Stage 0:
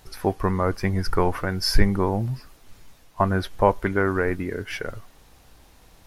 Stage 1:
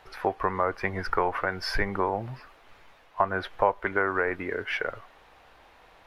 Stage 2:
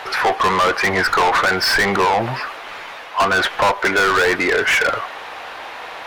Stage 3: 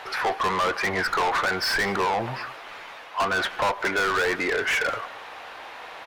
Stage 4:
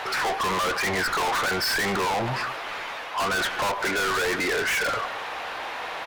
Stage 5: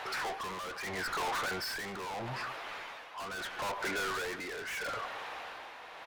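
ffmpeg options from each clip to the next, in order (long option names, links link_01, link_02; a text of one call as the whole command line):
ffmpeg -i in.wav -filter_complex "[0:a]acrossover=split=450 3200:gain=0.158 1 0.0891[link_01][link_02][link_03];[link_01][link_02][link_03]amix=inputs=3:normalize=0,acompressor=threshold=-29dB:ratio=2,volume=5dB" out.wav
ffmpeg -i in.wav -filter_complex "[0:a]asplit=2[link_01][link_02];[link_02]highpass=frequency=720:poles=1,volume=32dB,asoftclip=type=tanh:threshold=-7.5dB[link_03];[link_01][link_03]amix=inputs=2:normalize=0,lowpass=frequency=5600:poles=1,volume=-6dB" out.wav
ffmpeg -i in.wav -af "aecho=1:1:183:0.0944,volume=-8dB" out.wav
ffmpeg -i in.wav -af "asoftclip=type=tanh:threshold=-31.5dB,volume=8dB" out.wav
ffmpeg -i in.wav -af "tremolo=f=0.77:d=0.55,volume=-9dB" out.wav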